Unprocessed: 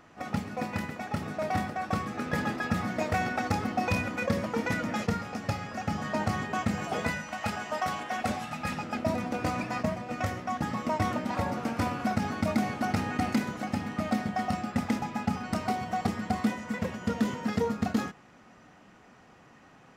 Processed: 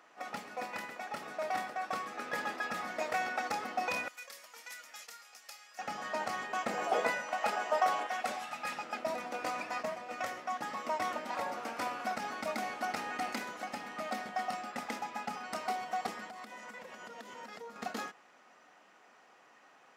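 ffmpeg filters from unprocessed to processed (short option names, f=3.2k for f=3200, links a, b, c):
-filter_complex "[0:a]asettb=1/sr,asplit=3[a][b][c];[a]atrim=end=4.084[d];[b]atrim=start=4.08:end=5.79,asetpts=PTS-STARTPTS,afade=t=in:d=0.004:c=qsin,afade=t=out:st=1.706:d=0.004:c=qsin,aderivative[e];[c]atrim=start=5.786[f];[d][e]acrossfade=d=0.004:c1=hsin:c2=qsin[g];[g][f]acrossfade=d=0.004:c1=qsin:c2=hsin,asettb=1/sr,asplit=3[h][i][j];[h]atrim=end=6.664[k];[i]atrim=start=6.66:end=8.07,asetpts=PTS-STARTPTS,afade=t=in:d=0.004:c=qsin,afade=t=out:st=1.406:d=0.004:c=qsin,equalizer=f=490:t=o:w=2.4:g=8.5[l];[j]atrim=start=8.066[m];[k][l]acrossfade=d=0.004:c1=hsin:c2=qsin[n];[n][m]acrossfade=d=0.004:c1=qsin:c2=hsin,asettb=1/sr,asplit=3[o][p][q];[o]atrim=end=16.294[r];[p]atrim=start=16.29:end=17.76,asetpts=PTS-STARTPTS,afade=t=in:d=0.004:c=qsin,afade=t=out:st=1.466:d=0.004:c=qsin,acompressor=threshold=-36dB:ratio=6:attack=3.2:release=140:knee=1:detection=peak[s];[q]atrim=start=17.756[t];[r][s]acrossfade=d=0.004:c1=hsin:c2=qsin[u];[u][t]acrossfade=d=0.004:c1=qsin:c2=hsin,highpass=510,volume=-3dB"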